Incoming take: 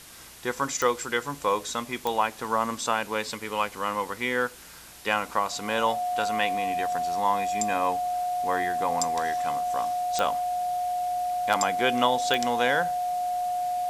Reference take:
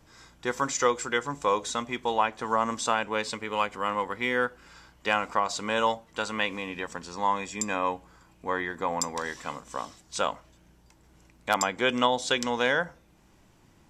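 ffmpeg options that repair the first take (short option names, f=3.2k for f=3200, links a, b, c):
-af "adeclick=t=4,bandreject=f=720:w=30,afftdn=nr=16:nf=-43"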